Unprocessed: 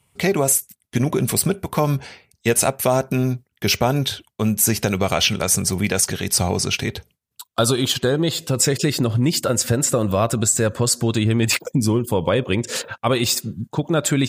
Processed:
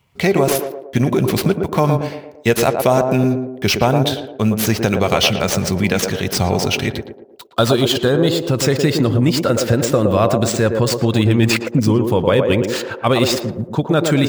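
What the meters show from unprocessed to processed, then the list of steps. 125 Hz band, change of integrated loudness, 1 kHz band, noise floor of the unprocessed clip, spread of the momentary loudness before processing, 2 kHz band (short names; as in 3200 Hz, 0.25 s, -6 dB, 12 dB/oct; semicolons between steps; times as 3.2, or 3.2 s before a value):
+4.0 dB, +3.0 dB, +4.5 dB, -73 dBFS, 6 LU, +3.5 dB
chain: median filter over 5 samples; on a send: narrowing echo 0.114 s, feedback 54%, band-pass 480 Hz, level -3 dB; on the sum: gain +3.5 dB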